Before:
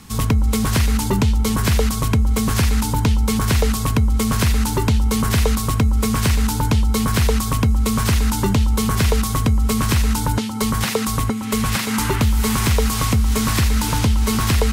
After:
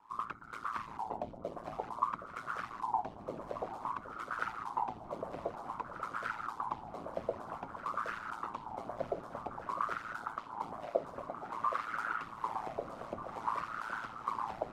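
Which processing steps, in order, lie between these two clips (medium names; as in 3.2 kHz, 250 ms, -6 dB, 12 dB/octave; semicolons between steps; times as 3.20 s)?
whisper effect; wah-wah 0.52 Hz 600–1400 Hz, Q 11; ring modulator 56 Hz; echo whose repeats swap between lows and highs 769 ms, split 830 Hz, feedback 77%, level -11.5 dB; trim +2 dB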